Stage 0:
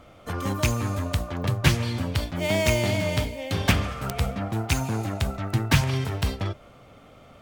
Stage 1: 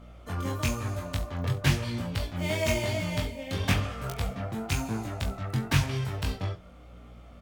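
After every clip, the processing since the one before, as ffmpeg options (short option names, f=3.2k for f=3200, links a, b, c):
-af "aeval=exprs='val(0)+0.00631*(sin(2*PI*60*n/s)+sin(2*PI*2*60*n/s)/2+sin(2*PI*3*60*n/s)/3+sin(2*PI*4*60*n/s)/4+sin(2*PI*5*60*n/s)/5)':c=same,flanger=delay=17:depth=5.6:speed=0.99,aecho=1:1:22|69:0.398|0.141,volume=-2.5dB"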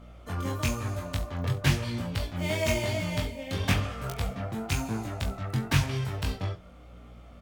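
-af anull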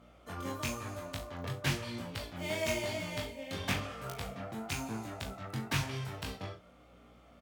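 -filter_complex "[0:a]highpass=f=200:p=1,asplit=2[a][b];[b]adelay=37,volume=-10.5dB[c];[a][c]amix=inputs=2:normalize=0,volume=-5dB"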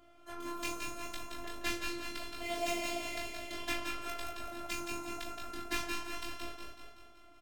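-filter_complex "[0:a]asplit=2[a][b];[b]aecho=0:1:189|378|567|756|945|1134:0.398|0.215|0.116|0.0627|0.0339|0.0183[c];[a][c]amix=inputs=2:normalize=0,afftfilt=real='hypot(re,im)*cos(PI*b)':imag='0':win_size=512:overlap=0.75,asplit=2[d][e];[e]aecho=0:1:172|388|402:0.531|0.126|0.2[f];[d][f]amix=inputs=2:normalize=0,volume=1.5dB"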